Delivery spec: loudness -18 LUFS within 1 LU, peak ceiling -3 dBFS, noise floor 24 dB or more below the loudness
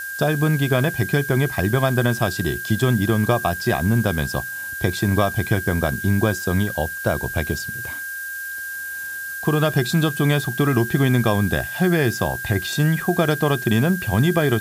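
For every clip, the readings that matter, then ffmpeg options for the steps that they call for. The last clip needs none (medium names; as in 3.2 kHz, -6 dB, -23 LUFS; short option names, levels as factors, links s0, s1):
steady tone 1.6 kHz; tone level -28 dBFS; noise floor -30 dBFS; noise floor target -45 dBFS; loudness -21.0 LUFS; peak level -4.0 dBFS; loudness target -18.0 LUFS
-> -af "bandreject=f=1600:w=30"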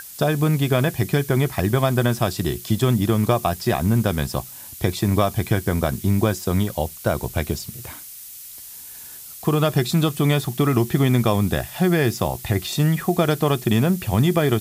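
steady tone not found; noise floor -39 dBFS; noise floor target -45 dBFS
-> -af "afftdn=nr=6:nf=-39"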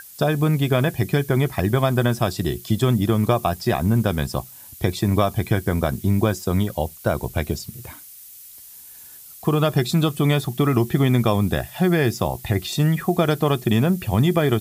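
noise floor -43 dBFS; noise floor target -45 dBFS
-> -af "afftdn=nr=6:nf=-43"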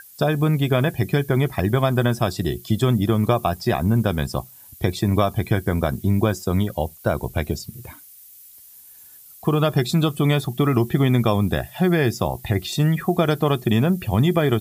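noise floor -46 dBFS; loudness -21.5 LUFS; peak level -4.5 dBFS; loudness target -18.0 LUFS
-> -af "volume=1.5,alimiter=limit=0.708:level=0:latency=1"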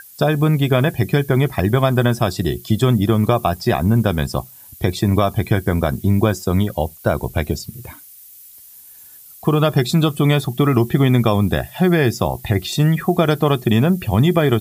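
loudness -18.0 LUFS; peak level -3.0 dBFS; noise floor -43 dBFS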